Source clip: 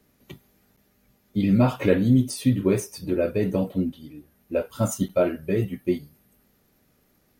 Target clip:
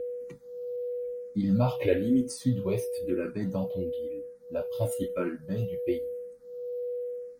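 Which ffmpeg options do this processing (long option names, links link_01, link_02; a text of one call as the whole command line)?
ffmpeg -i in.wav -filter_complex "[0:a]aeval=exprs='val(0)+0.0501*sin(2*PI*490*n/s)':channel_layout=same,asplit=2[link_01][link_02];[link_02]afreqshift=-1[link_03];[link_01][link_03]amix=inputs=2:normalize=1,volume=-4dB" out.wav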